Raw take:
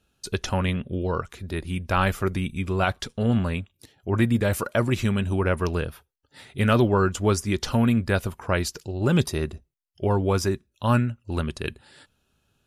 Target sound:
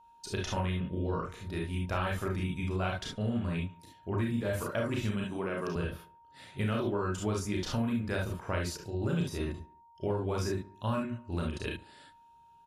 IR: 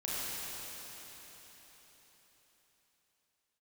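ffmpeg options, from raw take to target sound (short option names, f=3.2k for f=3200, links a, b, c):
-filter_complex "[0:a]highshelf=f=9.1k:g=-4.5,asplit=2[a][b];[b]adelay=71,lowpass=f=3.4k:p=1,volume=-22dB,asplit=2[c][d];[d]adelay=71,lowpass=f=3.4k:p=1,volume=0.52,asplit=2[e][f];[f]adelay=71,lowpass=f=3.4k:p=1,volume=0.52,asplit=2[g][h];[h]adelay=71,lowpass=f=3.4k:p=1,volume=0.52[i];[a][c][e][g][i]amix=inputs=5:normalize=0[j];[1:a]atrim=start_sample=2205,atrim=end_sample=3528[k];[j][k]afir=irnorm=-1:irlink=0,aeval=exprs='val(0)+0.00251*sin(2*PI*930*n/s)':c=same,acompressor=threshold=-24dB:ratio=4,asettb=1/sr,asplit=3[l][m][n];[l]atrim=end=5.244[o];[m]atrim=start=5.24:end=5.76,asetpts=PTS-STARTPTS,afade=t=in:d=0.004:c=qsin,afade=t=out:st=0.516:d=0.004:c=qsin,highpass=f=150:w=0.5412,highpass=f=150:w=1.3066[p];[n]atrim=start=5.756[q];[o][p]acrossfade=d=0.004:c1=hsin:c2=qsin[r];[r][q]acrossfade=d=0.004:c1=qsin:c2=hsin,volume=-4.5dB"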